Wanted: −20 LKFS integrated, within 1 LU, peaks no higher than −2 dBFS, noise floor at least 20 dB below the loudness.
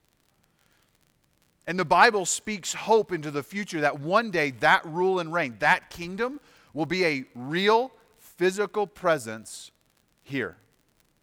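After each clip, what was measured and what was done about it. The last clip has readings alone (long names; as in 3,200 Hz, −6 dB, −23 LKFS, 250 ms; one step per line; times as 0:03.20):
crackle rate 44 per second; integrated loudness −25.0 LKFS; sample peak −4.5 dBFS; target loudness −20.0 LKFS
→ click removal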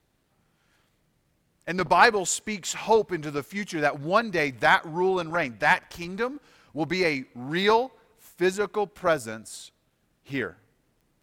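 crackle rate 0.18 per second; integrated loudness −25.0 LKFS; sample peak −4.5 dBFS; target loudness −20.0 LKFS
→ level +5 dB
brickwall limiter −2 dBFS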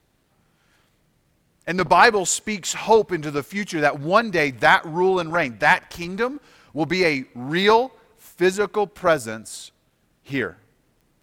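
integrated loudness −20.5 LKFS; sample peak −2.0 dBFS; background noise floor −65 dBFS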